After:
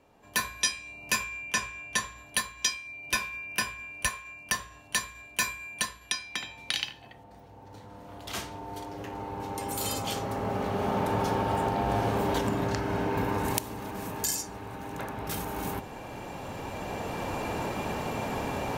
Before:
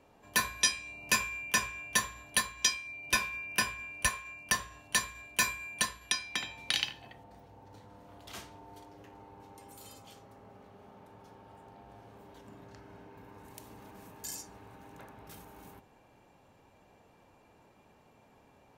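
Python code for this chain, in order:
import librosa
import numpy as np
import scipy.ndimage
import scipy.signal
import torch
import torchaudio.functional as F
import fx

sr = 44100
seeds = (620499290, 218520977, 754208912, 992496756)

y = fx.recorder_agc(x, sr, target_db=-17.5, rise_db_per_s=6.5, max_gain_db=30)
y = fx.lowpass(y, sr, hz=10000.0, slope=12, at=(1.24, 2.18))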